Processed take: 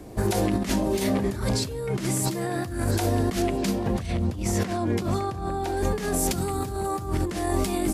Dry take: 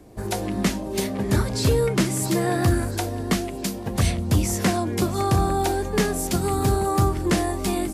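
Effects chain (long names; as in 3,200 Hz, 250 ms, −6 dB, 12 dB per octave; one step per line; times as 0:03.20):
0:03.42–0:05.77: high-shelf EQ 6,300 Hz −10.5 dB
compressor whose output falls as the input rises −28 dBFS, ratio −1
level +1.5 dB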